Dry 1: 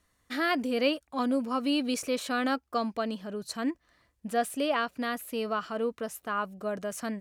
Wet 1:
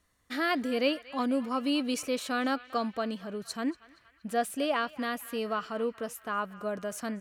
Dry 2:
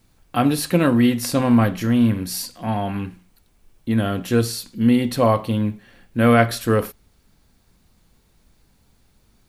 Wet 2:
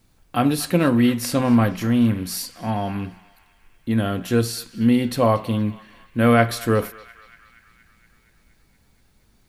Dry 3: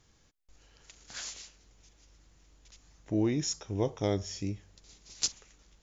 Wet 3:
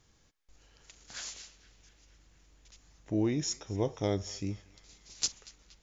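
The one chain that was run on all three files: band-passed feedback delay 235 ms, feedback 72%, band-pass 2.1 kHz, level -16.5 dB; trim -1 dB

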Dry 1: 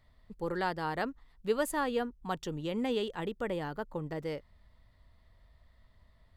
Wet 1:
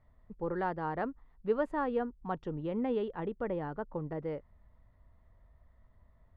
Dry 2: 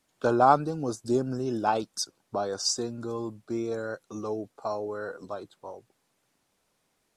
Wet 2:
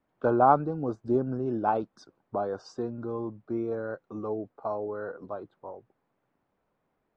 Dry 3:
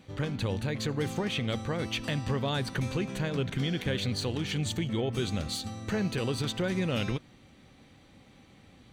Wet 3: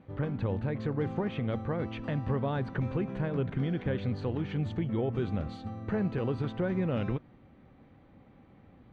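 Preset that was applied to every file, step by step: low-pass 1.4 kHz 12 dB/octave

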